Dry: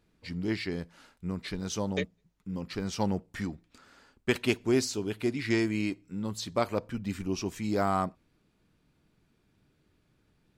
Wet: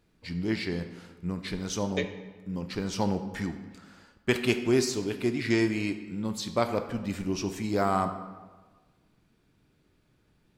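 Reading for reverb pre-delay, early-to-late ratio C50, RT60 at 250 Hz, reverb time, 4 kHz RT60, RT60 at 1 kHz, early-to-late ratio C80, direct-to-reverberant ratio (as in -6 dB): 15 ms, 10.0 dB, 1.5 s, 1.4 s, 0.90 s, 1.3 s, 11.5 dB, 8.0 dB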